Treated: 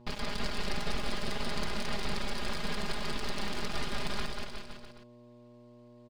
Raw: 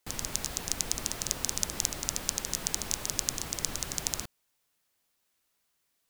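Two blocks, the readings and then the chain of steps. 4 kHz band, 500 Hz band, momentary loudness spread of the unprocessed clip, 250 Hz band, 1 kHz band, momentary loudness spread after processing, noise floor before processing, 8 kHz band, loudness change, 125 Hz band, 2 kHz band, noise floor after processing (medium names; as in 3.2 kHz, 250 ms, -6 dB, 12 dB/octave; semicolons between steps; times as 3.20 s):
-2.0 dB, +5.5 dB, 3 LU, +5.5 dB, +5.0 dB, 20 LU, -77 dBFS, -18.0 dB, -5.0 dB, +2.0 dB, +4.5 dB, -55 dBFS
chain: self-modulated delay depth 0.11 ms; in parallel at -1 dB: peak limiter -11.5 dBFS, peak gain reduction 7.5 dB; on the sum: resampled via 11.025 kHz; half-wave rectifier; mains buzz 120 Hz, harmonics 9, -54 dBFS -7 dB/octave; comb 4.9 ms, depth 77%; on a send: bouncing-ball echo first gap 190 ms, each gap 0.9×, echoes 5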